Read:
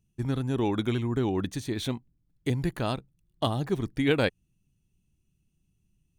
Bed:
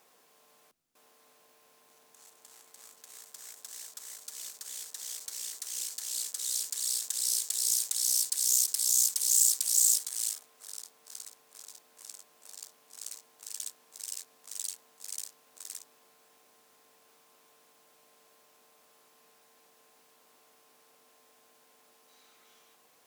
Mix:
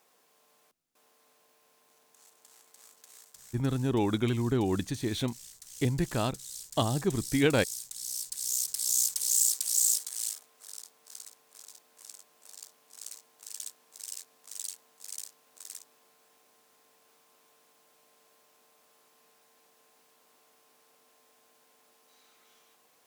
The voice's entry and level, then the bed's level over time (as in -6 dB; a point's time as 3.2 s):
3.35 s, -0.5 dB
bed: 3.05 s -3 dB
3.99 s -10.5 dB
7.94 s -10.5 dB
8.94 s -1.5 dB